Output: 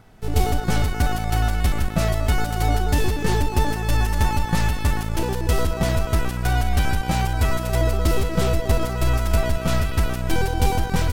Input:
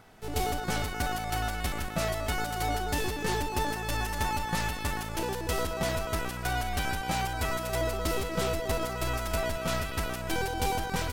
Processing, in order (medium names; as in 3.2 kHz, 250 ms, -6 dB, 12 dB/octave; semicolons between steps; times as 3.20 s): bass shelf 230 Hz +11 dB; in parallel at -3.5 dB: crossover distortion -41 dBFS